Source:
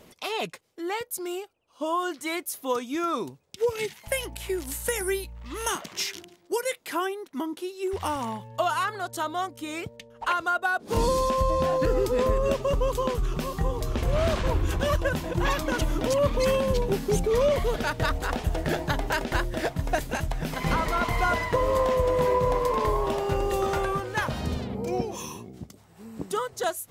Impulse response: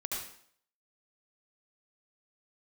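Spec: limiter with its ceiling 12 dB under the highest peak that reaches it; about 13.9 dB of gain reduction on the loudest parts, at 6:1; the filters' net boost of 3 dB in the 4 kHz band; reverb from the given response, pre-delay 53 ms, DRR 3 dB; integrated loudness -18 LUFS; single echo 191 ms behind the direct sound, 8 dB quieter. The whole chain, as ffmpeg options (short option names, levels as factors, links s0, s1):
-filter_complex "[0:a]equalizer=f=4000:t=o:g=4,acompressor=threshold=0.0178:ratio=6,alimiter=level_in=2:limit=0.0631:level=0:latency=1,volume=0.501,aecho=1:1:191:0.398,asplit=2[s0][s1];[1:a]atrim=start_sample=2205,adelay=53[s2];[s1][s2]afir=irnorm=-1:irlink=0,volume=0.501[s3];[s0][s3]amix=inputs=2:normalize=0,volume=10"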